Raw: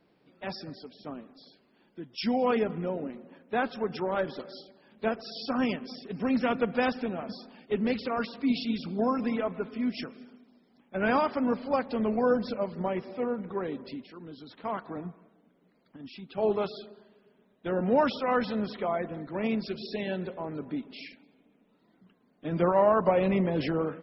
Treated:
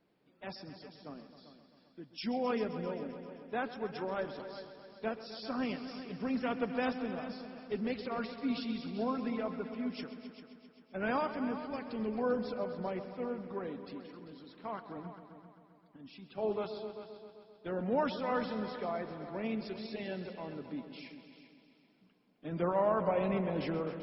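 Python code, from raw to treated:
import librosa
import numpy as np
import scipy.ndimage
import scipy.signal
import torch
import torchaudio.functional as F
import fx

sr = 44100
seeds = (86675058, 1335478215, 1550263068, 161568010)

y = fx.spec_box(x, sr, start_s=11.33, length_s=0.86, low_hz=470.0, high_hz=1700.0, gain_db=-8)
y = fx.echo_heads(y, sr, ms=131, heads='all three', feedback_pct=47, wet_db=-14.5)
y = F.gain(torch.from_numpy(y), -7.5).numpy()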